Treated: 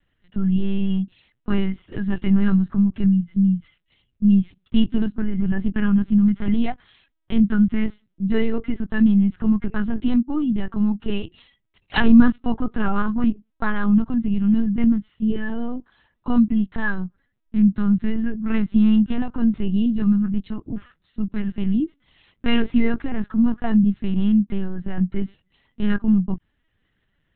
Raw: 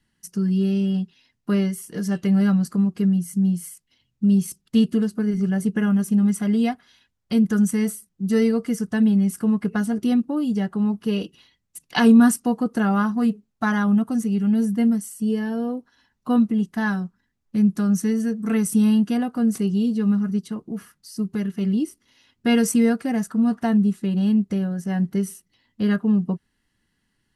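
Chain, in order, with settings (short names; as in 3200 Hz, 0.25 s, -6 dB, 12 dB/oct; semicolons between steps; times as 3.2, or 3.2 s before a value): LPC vocoder at 8 kHz pitch kept; dynamic EQ 520 Hz, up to -7 dB, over -43 dBFS, Q 2.1; gain +2.5 dB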